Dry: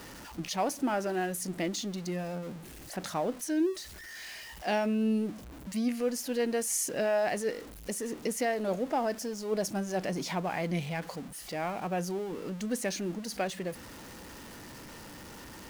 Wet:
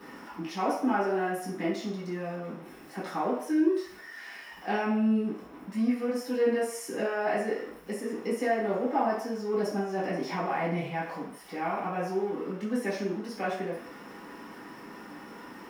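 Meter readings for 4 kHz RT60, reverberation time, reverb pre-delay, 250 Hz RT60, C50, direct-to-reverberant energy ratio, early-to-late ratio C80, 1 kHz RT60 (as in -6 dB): 0.65 s, 0.60 s, 3 ms, 0.40 s, 3.0 dB, -10.0 dB, 7.0 dB, 0.65 s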